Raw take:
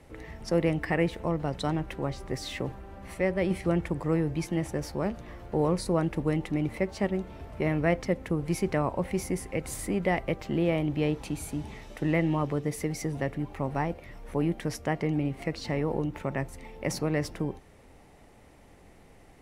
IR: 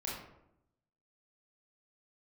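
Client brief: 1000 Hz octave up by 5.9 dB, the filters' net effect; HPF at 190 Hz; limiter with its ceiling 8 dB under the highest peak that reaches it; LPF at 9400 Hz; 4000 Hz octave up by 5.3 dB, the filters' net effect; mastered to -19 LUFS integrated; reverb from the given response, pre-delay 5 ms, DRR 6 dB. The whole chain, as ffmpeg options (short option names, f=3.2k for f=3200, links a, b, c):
-filter_complex "[0:a]highpass=190,lowpass=9.4k,equalizer=f=1k:t=o:g=7.5,equalizer=f=4k:t=o:g=6.5,alimiter=limit=-17dB:level=0:latency=1,asplit=2[a][b];[1:a]atrim=start_sample=2205,adelay=5[c];[b][c]afir=irnorm=-1:irlink=0,volume=-8dB[d];[a][d]amix=inputs=2:normalize=0,volume=11.5dB"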